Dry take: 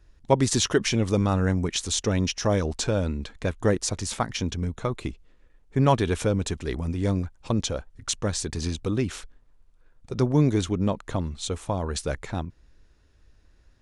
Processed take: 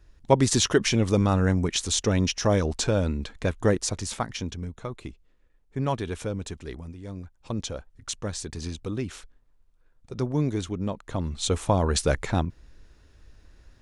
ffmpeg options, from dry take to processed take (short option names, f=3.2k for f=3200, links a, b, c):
-af "volume=22dB,afade=t=out:st=3.53:d=1.21:silence=0.398107,afade=t=out:st=6.66:d=0.37:silence=0.375837,afade=t=in:st=7.03:d=0.6:silence=0.298538,afade=t=in:st=11.08:d=0.48:silence=0.298538"